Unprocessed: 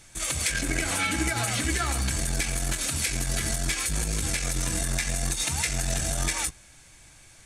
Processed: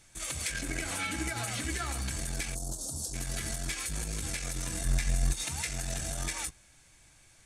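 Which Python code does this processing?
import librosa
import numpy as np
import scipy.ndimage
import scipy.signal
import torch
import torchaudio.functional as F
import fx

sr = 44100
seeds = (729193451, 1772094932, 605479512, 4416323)

y = fx.cheby1_bandstop(x, sr, low_hz=780.0, high_hz=5600.0, order=2, at=(2.54, 3.13), fade=0.02)
y = fx.low_shelf(y, sr, hz=150.0, db=11.5, at=(4.85, 5.33))
y = F.gain(torch.from_numpy(y), -7.5).numpy()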